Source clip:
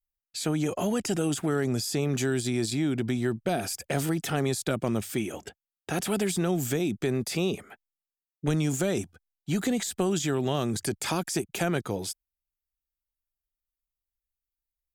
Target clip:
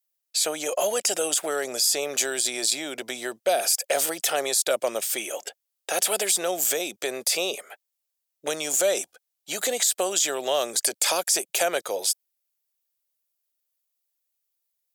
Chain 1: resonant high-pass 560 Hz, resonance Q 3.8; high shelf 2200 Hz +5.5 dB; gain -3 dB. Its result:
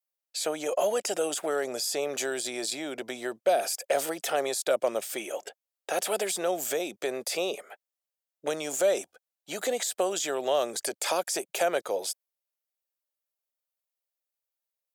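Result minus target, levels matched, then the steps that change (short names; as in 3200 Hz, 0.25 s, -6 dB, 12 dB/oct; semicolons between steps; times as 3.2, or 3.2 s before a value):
4000 Hz band -2.5 dB
change: high shelf 2200 Hz +16 dB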